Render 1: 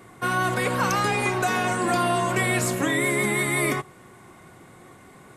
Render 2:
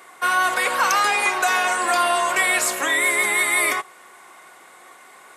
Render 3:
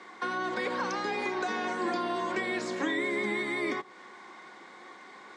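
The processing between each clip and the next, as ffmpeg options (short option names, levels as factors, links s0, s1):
-af "highpass=750,volume=2.11"
-filter_complex "[0:a]acrossover=split=490[s0][s1];[s1]acompressor=threshold=0.0316:ratio=6[s2];[s0][s2]amix=inputs=2:normalize=0,highpass=120,equalizer=f=210:t=q:w=4:g=9,equalizer=f=320:t=q:w=4:g=5,equalizer=f=650:t=q:w=4:g=-7,equalizer=f=1300:t=q:w=4:g=-6,equalizer=f=2700:t=q:w=4:g=-8,lowpass=f=5300:w=0.5412,lowpass=f=5300:w=1.3066"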